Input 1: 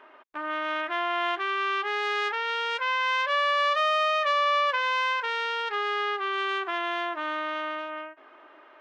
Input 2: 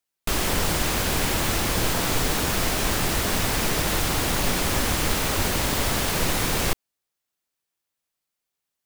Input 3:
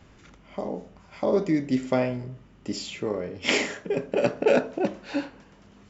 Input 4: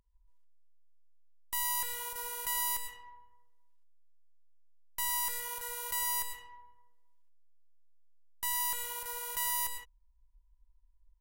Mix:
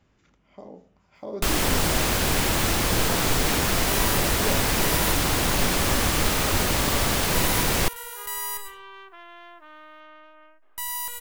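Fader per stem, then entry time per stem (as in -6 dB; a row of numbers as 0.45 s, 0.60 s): -16.0 dB, +1.0 dB, -11.5 dB, +2.0 dB; 2.45 s, 1.15 s, 0.00 s, 2.35 s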